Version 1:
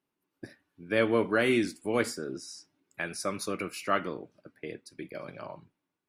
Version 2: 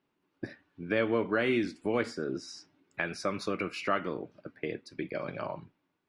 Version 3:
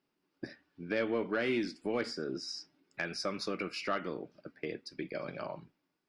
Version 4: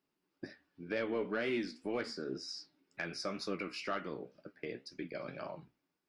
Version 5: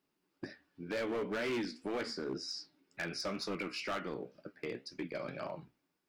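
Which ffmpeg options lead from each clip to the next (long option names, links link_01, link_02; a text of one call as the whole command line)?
ffmpeg -i in.wav -af "acompressor=threshold=-38dB:ratio=2,lowpass=4000,volume=6.5dB" out.wav
ffmpeg -i in.wav -af "asoftclip=type=tanh:threshold=-17dB,equalizer=frequency=100:width_type=o:width=0.33:gain=-11,equalizer=frequency=1000:width_type=o:width=0.33:gain=-3,equalizer=frequency=5000:width_type=o:width=0.33:gain=10,volume=-3dB" out.wav
ffmpeg -i in.wav -af "flanger=delay=9.5:depth=7.8:regen=61:speed=2:shape=triangular,volume=1dB" out.wav
ffmpeg -i in.wav -af "volume=34.5dB,asoftclip=hard,volume=-34.5dB,volume=2.5dB" out.wav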